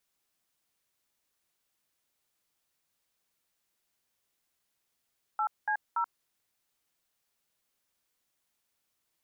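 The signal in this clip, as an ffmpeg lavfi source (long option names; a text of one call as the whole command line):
ffmpeg -f lavfi -i "aevalsrc='0.0355*clip(min(mod(t,0.286),0.081-mod(t,0.286))/0.002,0,1)*(eq(floor(t/0.286),0)*(sin(2*PI*852*mod(t,0.286))+sin(2*PI*1336*mod(t,0.286)))+eq(floor(t/0.286),1)*(sin(2*PI*852*mod(t,0.286))+sin(2*PI*1633*mod(t,0.286)))+eq(floor(t/0.286),2)*(sin(2*PI*941*mod(t,0.286))+sin(2*PI*1336*mod(t,0.286))))':duration=0.858:sample_rate=44100" out.wav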